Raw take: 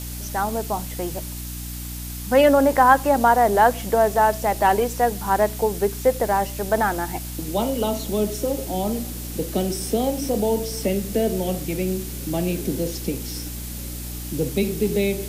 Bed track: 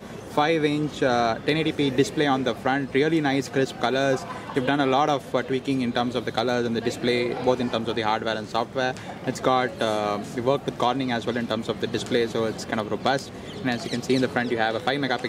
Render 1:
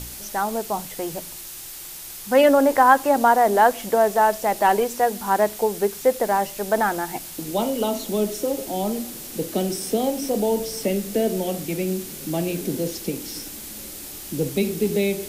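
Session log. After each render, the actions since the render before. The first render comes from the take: de-hum 60 Hz, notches 5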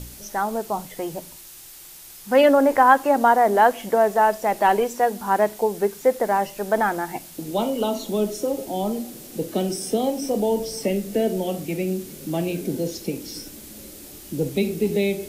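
noise print and reduce 6 dB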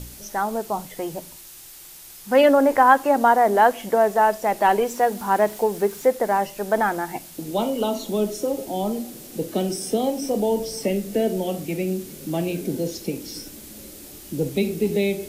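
4.87–6.06 G.711 law mismatch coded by mu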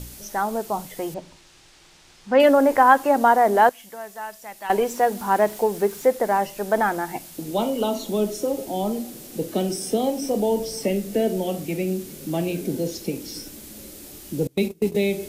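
1.14–2.4 air absorption 120 m; 3.69–4.7 passive tone stack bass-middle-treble 5-5-5; 14.47–14.95 gate -25 dBFS, range -25 dB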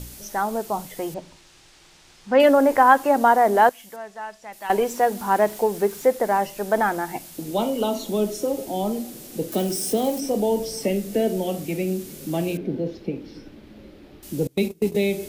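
3.96–4.53 air absorption 80 m; 9.52–10.2 switching spikes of -27.5 dBFS; 12.57–14.23 air absorption 350 m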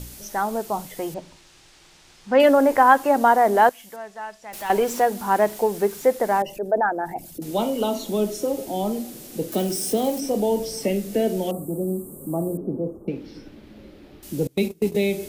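4.53–5.03 zero-crossing step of -33.5 dBFS; 6.42–7.42 formant sharpening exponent 2; 11.51–13.08 Chebyshev band-stop 1200–8100 Hz, order 4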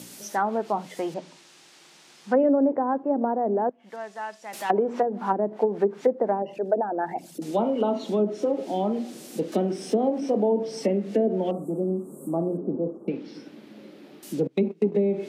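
treble ducked by the level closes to 420 Hz, closed at -15.5 dBFS; HPF 170 Hz 24 dB/oct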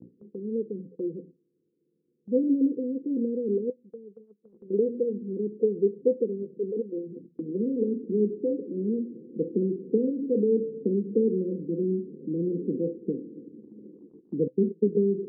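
Chebyshev low-pass 510 Hz, order 10; gate -48 dBFS, range -11 dB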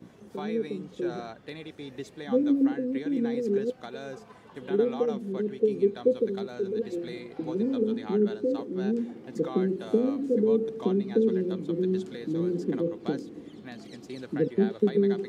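add bed track -18 dB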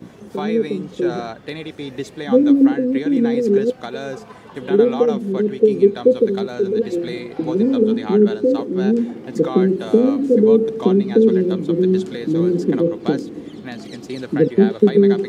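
gain +11 dB; limiter -2 dBFS, peak gain reduction 1.5 dB

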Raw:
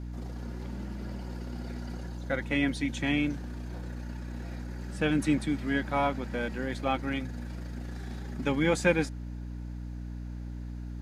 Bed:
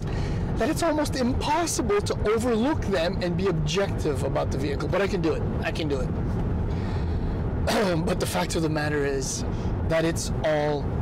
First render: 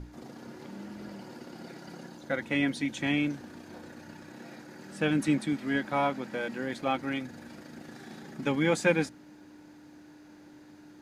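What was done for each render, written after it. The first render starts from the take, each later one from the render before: notches 60/120/180/240 Hz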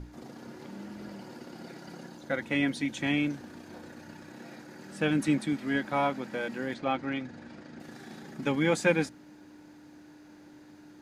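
6.74–7.8 air absorption 92 m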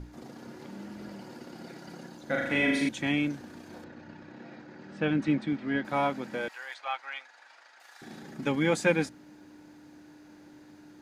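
2.24–2.89 flutter echo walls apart 6.9 m, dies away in 0.92 s; 3.84–5.85 air absorption 170 m; 6.48–8.02 HPF 810 Hz 24 dB/oct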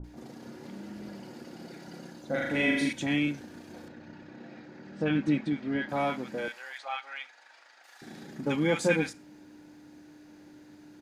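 bands offset in time lows, highs 40 ms, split 1100 Hz; Schroeder reverb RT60 0.32 s, combs from 27 ms, DRR 18 dB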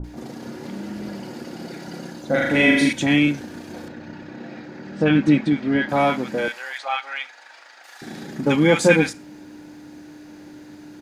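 gain +10.5 dB

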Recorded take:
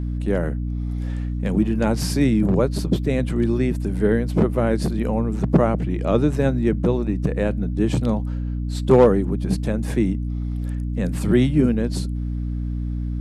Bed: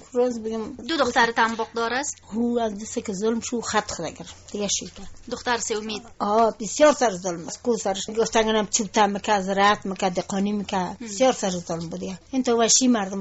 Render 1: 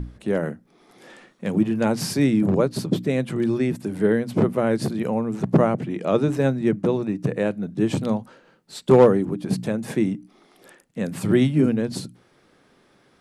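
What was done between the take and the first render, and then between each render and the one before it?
notches 60/120/180/240/300 Hz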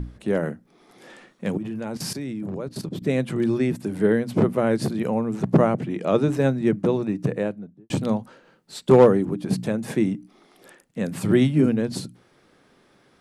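1.57–3.02 level quantiser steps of 15 dB; 7.22–7.9 studio fade out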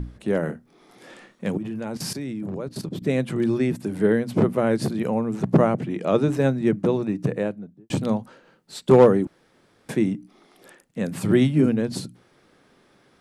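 0.46–1.45 doubler 25 ms -6 dB; 9.27–9.89 room tone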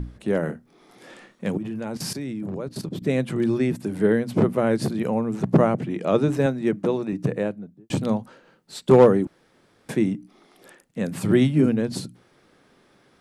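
6.46–7.13 HPF 220 Hz 6 dB/oct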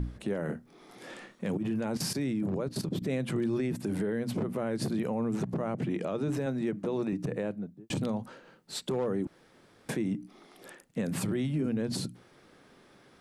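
compressor, threshold -22 dBFS, peak gain reduction 13 dB; limiter -23 dBFS, peak gain reduction 10.5 dB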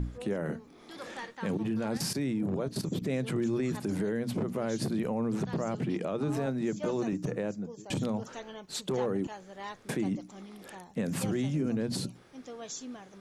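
add bed -23.5 dB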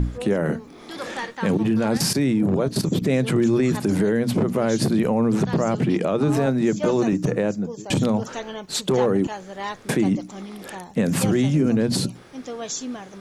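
gain +11 dB

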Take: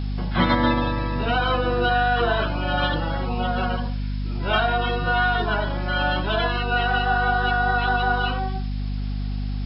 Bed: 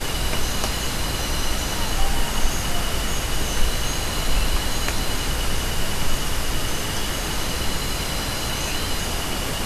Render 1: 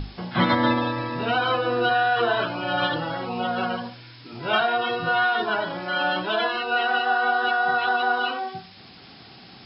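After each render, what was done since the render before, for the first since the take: notches 50/100/150/200/250 Hz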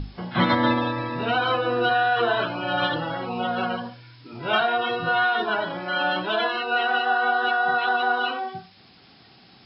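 noise print and reduce 6 dB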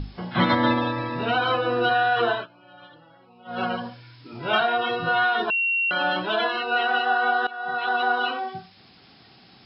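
2.29–3.63 dip -24 dB, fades 0.18 s; 5.5–5.91 bleep 2740 Hz -20 dBFS; 7.47–8.01 fade in, from -19.5 dB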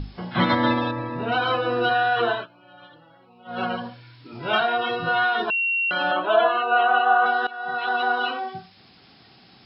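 0.91–1.32 LPF 1400 Hz 6 dB/oct; 2.16–4.33 notch 5000 Hz; 6.11–7.26 speaker cabinet 180–3200 Hz, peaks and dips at 190 Hz -8 dB, 660 Hz +9 dB, 1200 Hz +9 dB, 2000 Hz -8 dB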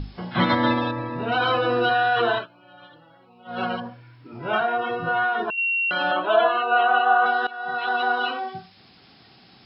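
1.4–2.39 fast leveller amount 50%; 3.8–5.58 bell 4100 Hz -12.5 dB 1.2 oct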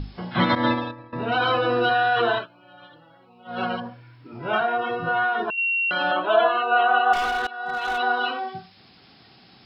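0.55–1.13 expander -20 dBFS; 7.13–7.98 overloaded stage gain 21.5 dB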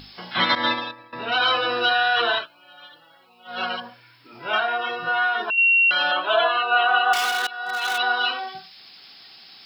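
tilt +4.5 dB/oct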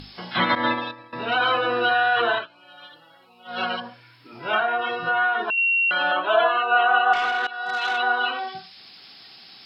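low shelf 480 Hz +4.5 dB; treble ducked by the level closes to 2500 Hz, closed at -18.5 dBFS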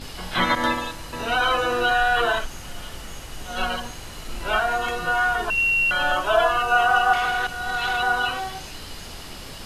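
add bed -13 dB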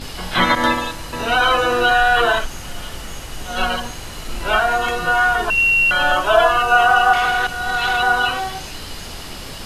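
gain +5.5 dB; limiter -3 dBFS, peak gain reduction 2 dB

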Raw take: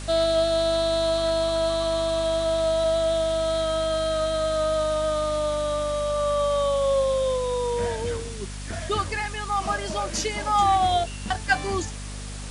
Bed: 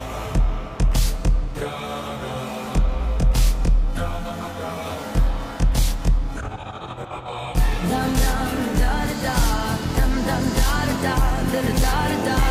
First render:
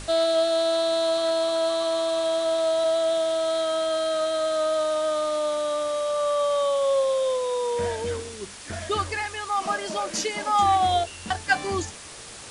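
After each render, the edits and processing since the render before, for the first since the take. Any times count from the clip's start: notches 50/100/150/200/250 Hz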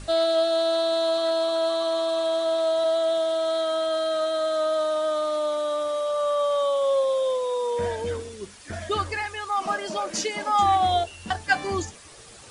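denoiser 8 dB, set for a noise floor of -41 dBFS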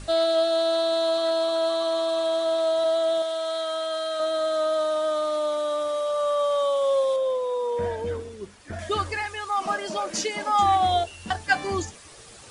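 3.22–4.2 low shelf 450 Hz -11.5 dB; 7.16–8.79 high shelf 2500 Hz -9 dB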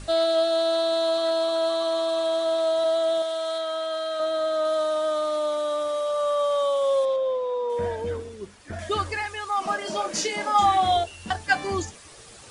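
3.58–4.65 high shelf 5700 Hz -6.5 dB; 7.05–7.7 air absorption 120 m; 9.78–10.97 doubler 29 ms -4.5 dB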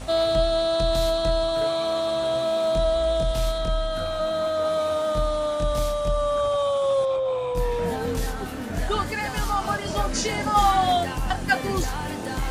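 add bed -9 dB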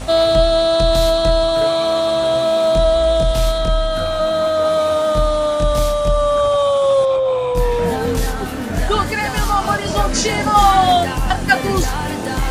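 gain +8 dB; limiter -2 dBFS, peak gain reduction 1.5 dB

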